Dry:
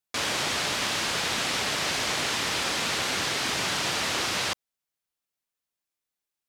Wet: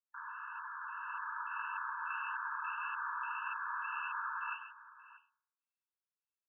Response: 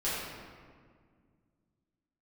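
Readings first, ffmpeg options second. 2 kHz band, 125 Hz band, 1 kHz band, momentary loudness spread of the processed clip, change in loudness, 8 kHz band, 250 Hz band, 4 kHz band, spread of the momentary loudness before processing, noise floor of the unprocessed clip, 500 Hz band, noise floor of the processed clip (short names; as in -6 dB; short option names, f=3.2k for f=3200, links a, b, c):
-10.5 dB, under -40 dB, -6.5 dB, 8 LU, -14.0 dB, under -40 dB, under -40 dB, under -35 dB, 1 LU, under -85 dBFS, under -40 dB, under -85 dBFS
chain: -af "bandreject=f=68.25:t=h:w=4,bandreject=f=136.5:t=h:w=4,bandreject=f=204.75:t=h:w=4,bandreject=f=273:t=h:w=4,bandreject=f=341.25:t=h:w=4,bandreject=f=409.5:t=h:w=4,bandreject=f=477.75:t=h:w=4,bandreject=f=546:t=h:w=4,bandreject=f=614.25:t=h:w=4,bandreject=f=682.5:t=h:w=4,bandreject=f=750.75:t=h:w=4,bandreject=f=819:t=h:w=4,bandreject=f=887.25:t=h:w=4,bandreject=f=955.5:t=h:w=4,bandreject=f=1.02375k:t=h:w=4,bandreject=f=1.092k:t=h:w=4,bandreject=f=1.16025k:t=h:w=4,bandreject=f=1.2285k:t=h:w=4,bandreject=f=1.29675k:t=h:w=4,bandreject=f=1.365k:t=h:w=4,bandreject=f=1.43325k:t=h:w=4,bandreject=f=1.5015k:t=h:w=4,bandreject=f=1.56975k:t=h:w=4,bandreject=f=1.638k:t=h:w=4,bandreject=f=1.70625k:t=h:w=4,bandreject=f=1.7745k:t=h:w=4,bandreject=f=1.84275k:t=h:w=4,bandreject=f=1.911k:t=h:w=4,bandreject=f=1.97925k:t=h:w=4,bandreject=f=2.0475k:t=h:w=4,bandreject=f=2.11575k:t=h:w=4,bandreject=f=2.184k:t=h:w=4,bandreject=f=2.25225k:t=h:w=4,bandreject=f=2.3205k:t=h:w=4,bandreject=f=2.38875k:t=h:w=4,bandreject=f=2.457k:t=h:w=4,asubboost=boost=6.5:cutoff=240,lowpass=f=2.2k:t=q:w=0.5098,lowpass=f=2.2k:t=q:w=0.6013,lowpass=f=2.2k:t=q:w=0.9,lowpass=f=2.2k:t=q:w=2.563,afreqshift=-2600,dynaudnorm=f=470:g=5:m=7dB,aecho=1:1:139|190|632:0.282|0.15|0.141,flanger=delay=8.8:depth=9.6:regen=-43:speed=1.7:shape=triangular,afftfilt=real='re*eq(mod(floor(b*sr/1024/870),2),1)':imag='im*eq(mod(floor(b*sr/1024/870),2),1)':win_size=1024:overlap=0.75,volume=-6dB"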